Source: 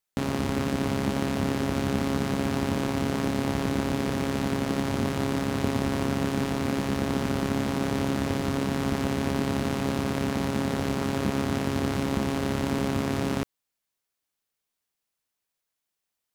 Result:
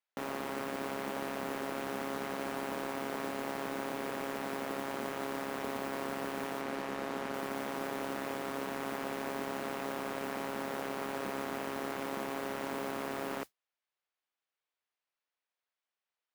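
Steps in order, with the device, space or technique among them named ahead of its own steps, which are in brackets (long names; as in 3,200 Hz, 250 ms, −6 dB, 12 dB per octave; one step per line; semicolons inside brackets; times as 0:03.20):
carbon microphone (band-pass filter 480–3,200 Hz; soft clipping −23 dBFS, distortion −15 dB; noise that follows the level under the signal 15 dB)
0:06.61–0:07.34: high-shelf EQ 10,000 Hz −9 dB
level −2.5 dB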